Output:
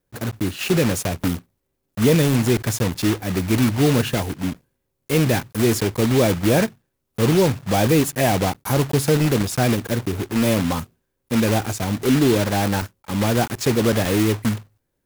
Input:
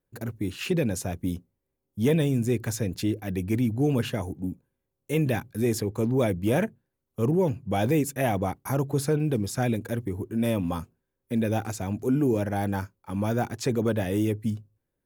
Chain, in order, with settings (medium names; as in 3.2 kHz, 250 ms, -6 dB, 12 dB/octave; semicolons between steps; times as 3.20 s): block-companded coder 3-bit; trim +6.5 dB